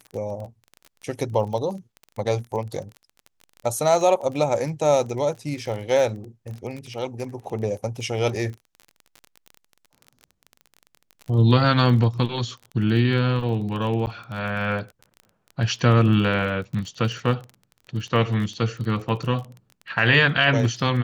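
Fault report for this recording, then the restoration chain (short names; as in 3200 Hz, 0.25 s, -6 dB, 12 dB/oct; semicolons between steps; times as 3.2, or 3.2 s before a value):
crackle 24/s -31 dBFS
14.06–14.07 gap 9.5 ms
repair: de-click; interpolate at 14.06, 9.5 ms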